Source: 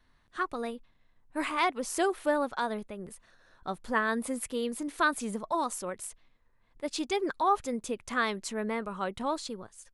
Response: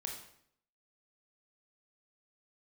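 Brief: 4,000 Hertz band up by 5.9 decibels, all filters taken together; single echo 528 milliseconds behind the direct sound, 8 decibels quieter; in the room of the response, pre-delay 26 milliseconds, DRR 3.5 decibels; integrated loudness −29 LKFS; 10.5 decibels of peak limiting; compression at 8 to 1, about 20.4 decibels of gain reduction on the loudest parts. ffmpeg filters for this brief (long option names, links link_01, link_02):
-filter_complex "[0:a]equalizer=frequency=4000:width_type=o:gain=7,acompressor=threshold=-43dB:ratio=8,alimiter=level_in=14.5dB:limit=-24dB:level=0:latency=1,volume=-14.5dB,aecho=1:1:528:0.398,asplit=2[link_01][link_02];[1:a]atrim=start_sample=2205,adelay=26[link_03];[link_02][link_03]afir=irnorm=-1:irlink=0,volume=-2.5dB[link_04];[link_01][link_04]amix=inputs=2:normalize=0,volume=18dB"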